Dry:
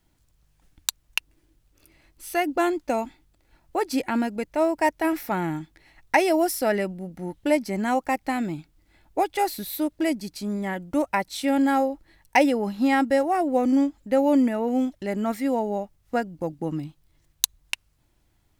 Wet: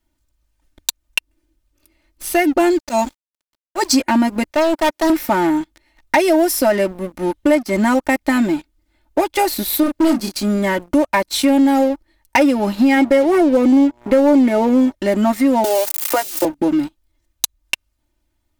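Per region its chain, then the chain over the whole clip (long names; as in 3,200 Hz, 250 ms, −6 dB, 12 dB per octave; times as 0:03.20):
0:02.70–0:03.98: flat-topped bell 5,700 Hz +9.5 dB 1.2 octaves + volume swells 105 ms + centre clipping without the shift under −47.5 dBFS
0:04.51–0:05.10: high-pass filter 280 Hz + hard clipping −28 dBFS
0:09.83–0:10.40: hard clipping −25.5 dBFS + double-tracking delay 31 ms −5 dB
0:12.96–0:14.92: hollow resonant body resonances 420/2,200 Hz, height 15 dB + hum with harmonics 120 Hz, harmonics 9, −48 dBFS −1 dB per octave
0:15.64–0:16.45: spike at every zero crossing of −23 dBFS + elliptic high-pass filter 320 Hz + multiband upward and downward compressor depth 100%
whole clip: comb filter 3.3 ms, depth 84%; downward compressor 2.5 to 1, threshold −24 dBFS; leveller curve on the samples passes 3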